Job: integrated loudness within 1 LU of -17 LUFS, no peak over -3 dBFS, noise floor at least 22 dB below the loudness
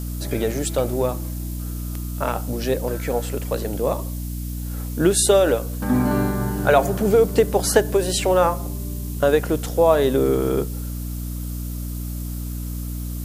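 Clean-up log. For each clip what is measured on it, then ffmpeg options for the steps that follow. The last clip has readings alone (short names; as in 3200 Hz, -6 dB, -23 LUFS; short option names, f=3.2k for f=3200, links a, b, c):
hum 60 Hz; harmonics up to 300 Hz; hum level -26 dBFS; noise floor -29 dBFS; noise floor target -44 dBFS; loudness -22.0 LUFS; peak -1.5 dBFS; loudness target -17.0 LUFS
-> -af "bandreject=f=60:t=h:w=6,bandreject=f=120:t=h:w=6,bandreject=f=180:t=h:w=6,bandreject=f=240:t=h:w=6,bandreject=f=300:t=h:w=6"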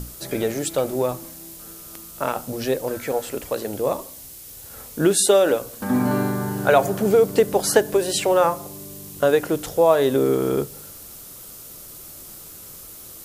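hum none; noise floor -41 dBFS; noise floor target -43 dBFS
-> -af "afftdn=nr=6:nf=-41"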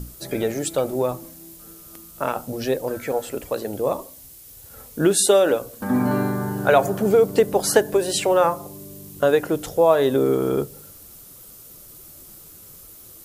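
noise floor -45 dBFS; loudness -21.0 LUFS; peak -2.0 dBFS; loudness target -17.0 LUFS
-> -af "volume=4dB,alimiter=limit=-3dB:level=0:latency=1"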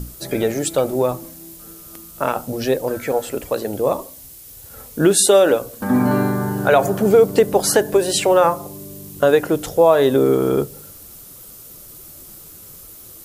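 loudness -17.5 LUFS; peak -3.0 dBFS; noise floor -41 dBFS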